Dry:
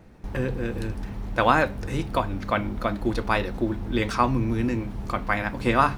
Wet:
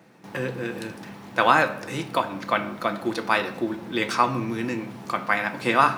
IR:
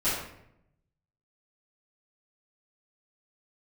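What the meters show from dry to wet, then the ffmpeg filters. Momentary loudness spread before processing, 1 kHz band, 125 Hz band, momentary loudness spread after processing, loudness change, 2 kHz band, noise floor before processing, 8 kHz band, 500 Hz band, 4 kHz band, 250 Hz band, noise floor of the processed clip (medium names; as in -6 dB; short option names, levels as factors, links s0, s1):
9 LU, +2.0 dB, -7.0 dB, 12 LU, +1.0 dB, +3.5 dB, -37 dBFS, +4.0 dB, 0.0 dB, +4.0 dB, -2.0 dB, -43 dBFS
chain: -filter_complex "[0:a]highpass=f=140:w=0.5412,highpass=f=140:w=1.3066,tiltshelf=f=690:g=-3.5,asplit=2[s0][s1];[1:a]atrim=start_sample=2205[s2];[s1][s2]afir=irnorm=-1:irlink=0,volume=0.1[s3];[s0][s3]amix=inputs=2:normalize=0"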